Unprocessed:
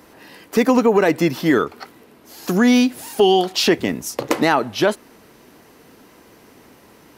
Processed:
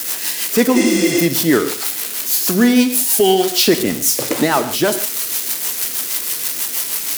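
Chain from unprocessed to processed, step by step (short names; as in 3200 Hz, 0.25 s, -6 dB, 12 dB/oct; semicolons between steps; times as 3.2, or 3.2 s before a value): switching spikes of -12 dBFS; rotary speaker horn 6.3 Hz; spectral repair 0.78–1.18, 260–10000 Hz after; non-linear reverb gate 0.18 s flat, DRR 9.5 dB; gain +3 dB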